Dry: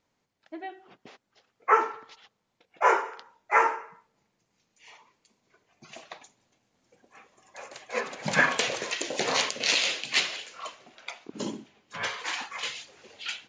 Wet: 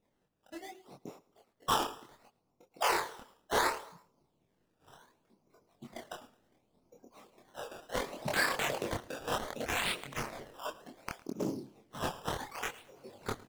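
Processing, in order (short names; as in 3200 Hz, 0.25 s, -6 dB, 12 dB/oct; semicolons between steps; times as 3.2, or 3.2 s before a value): Wiener smoothing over 25 samples; 9–10.33 auto swell 0.238 s; harmonic-percussive split harmonic -13 dB; in parallel at -3 dB: compressor, threshold -45 dBFS, peak gain reduction 24.5 dB; on the sum: limiter -21.5 dBFS, peak gain reduction 11.5 dB; decimation with a swept rate 14×, swing 100% 0.68 Hz; chorus voices 4, 0.35 Hz, delay 25 ms, depth 4.5 ms; feedback echo 0.109 s, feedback 36%, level -21 dB; Doppler distortion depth 0.24 ms; gain +5.5 dB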